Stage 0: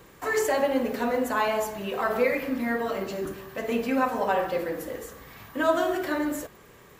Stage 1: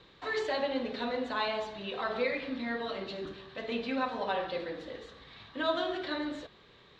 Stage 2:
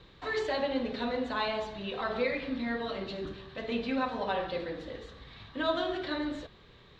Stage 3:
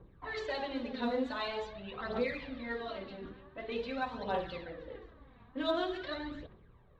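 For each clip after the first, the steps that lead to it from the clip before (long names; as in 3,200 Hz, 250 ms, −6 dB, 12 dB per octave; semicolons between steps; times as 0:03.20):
transistor ladder low-pass 4,100 Hz, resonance 75%; level +4 dB
low-shelf EQ 130 Hz +12 dB
phase shifter 0.46 Hz, delay 4.3 ms, feedback 56%; low-pass that shuts in the quiet parts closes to 870 Hz, open at −25.5 dBFS; level −6 dB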